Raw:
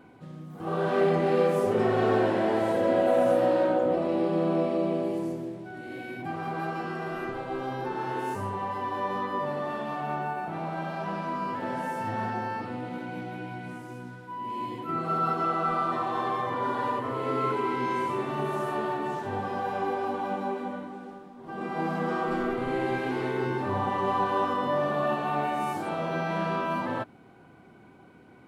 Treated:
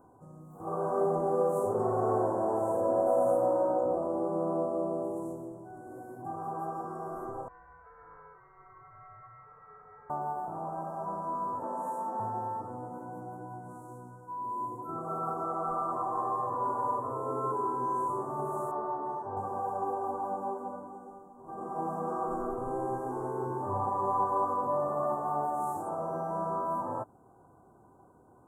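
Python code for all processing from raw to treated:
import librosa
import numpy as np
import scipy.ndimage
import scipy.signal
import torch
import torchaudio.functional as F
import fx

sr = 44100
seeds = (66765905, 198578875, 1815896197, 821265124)

y = fx.chain(x, sr, fx.highpass(hz=410.0, slope=12),
    fx.freq_invert(carrier_hz=3100), at=(7.48, 10.1))
y = fx.chain(y, sr, fx.steep_highpass(hz=170.0, slope=96),
    fx.doppler_dist(depth_ms=0.12), at=(11.63, 12.2))
y = fx.chain(y, sr, fx.savgol(points=15),
    fx.low_shelf(hz=210.0, db=-7.0), at=(18.71, 19.37))
y = scipy.signal.sosfilt(scipy.signal.ellip(3, 1.0, 60, [1100.0, 7500.0], 'bandstop', fs=sr, output='sos'), y)
y = fx.peak_eq(y, sr, hz=210.0, db=-10.0, octaves=1.7)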